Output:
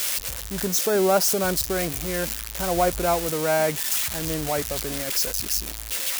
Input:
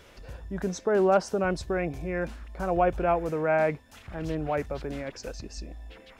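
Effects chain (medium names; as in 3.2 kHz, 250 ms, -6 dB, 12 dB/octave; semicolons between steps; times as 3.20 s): zero-crossing glitches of -17 dBFS; trim +2 dB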